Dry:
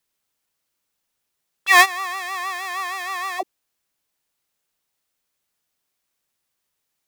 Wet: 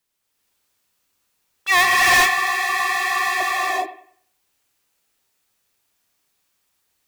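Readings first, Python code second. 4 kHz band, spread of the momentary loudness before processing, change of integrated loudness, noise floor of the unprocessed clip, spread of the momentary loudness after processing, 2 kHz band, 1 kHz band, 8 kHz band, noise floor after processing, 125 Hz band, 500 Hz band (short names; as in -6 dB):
+3.5 dB, 16 LU, +2.5 dB, -78 dBFS, 11 LU, +3.5 dB, +3.0 dB, +4.0 dB, -73 dBFS, n/a, +3.0 dB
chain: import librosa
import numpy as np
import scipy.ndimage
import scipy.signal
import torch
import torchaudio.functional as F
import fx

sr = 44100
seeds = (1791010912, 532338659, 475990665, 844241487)

y = fx.echo_bbd(x, sr, ms=96, stages=2048, feedback_pct=31, wet_db=-15.0)
y = fx.rev_gated(y, sr, seeds[0], gate_ms=450, shape='rising', drr_db=-6.5)
y = 10.0 ** (-11.5 / 20.0) * np.tanh(y / 10.0 ** (-11.5 / 20.0))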